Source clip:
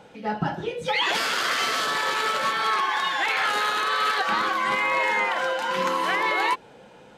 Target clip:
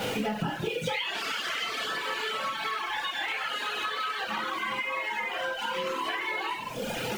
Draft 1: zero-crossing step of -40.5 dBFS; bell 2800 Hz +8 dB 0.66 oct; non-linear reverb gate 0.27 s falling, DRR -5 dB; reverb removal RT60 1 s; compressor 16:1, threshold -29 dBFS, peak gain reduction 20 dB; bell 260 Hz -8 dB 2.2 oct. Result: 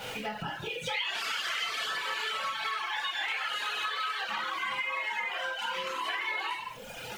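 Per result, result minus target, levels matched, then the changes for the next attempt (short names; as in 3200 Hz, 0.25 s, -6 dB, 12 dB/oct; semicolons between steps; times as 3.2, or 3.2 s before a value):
250 Hz band -10.0 dB; zero-crossing step: distortion -8 dB
change: second bell 260 Hz +4 dB 2.2 oct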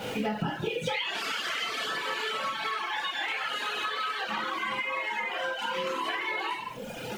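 zero-crossing step: distortion -8 dB
change: zero-crossing step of -32 dBFS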